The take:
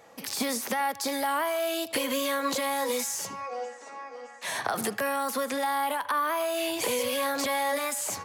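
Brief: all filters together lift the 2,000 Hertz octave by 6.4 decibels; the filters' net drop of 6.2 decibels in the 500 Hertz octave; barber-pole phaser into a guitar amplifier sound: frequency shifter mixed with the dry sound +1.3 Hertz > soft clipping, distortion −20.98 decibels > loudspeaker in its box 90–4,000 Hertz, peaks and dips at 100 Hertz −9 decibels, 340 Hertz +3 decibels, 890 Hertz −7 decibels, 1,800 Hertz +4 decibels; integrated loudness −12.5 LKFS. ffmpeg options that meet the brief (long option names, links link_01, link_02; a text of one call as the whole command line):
ffmpeg -i in.wav -filter_complex "[0:a]equalizer=frequency=500:width_type=o:gain=-7.5,equalizer=frequency=2000:width_type=o:gain=5.5,asplit=2[link_01][link_02];[link_02]afreqshift=1.3[link_03];[link_01][link_03]amix=inputs=2:normalize=1,asoftclip=threshold=-23.5dB,highpass=90,equalizer=frequency=100:width_type=q:width=4:gain=-9,equalizer=frequency=340:width_type=q:width=4:gain=3,equalizer=frequency=890:width_type=q:width=4:gain=-7,equalizer=frequency=1800:width_type=q:width=4:gain=4,lowpass=frequency=4000:width=0.5412,lowpass=frequency=4000:width=1.3066,volume=20.5dB" out.wav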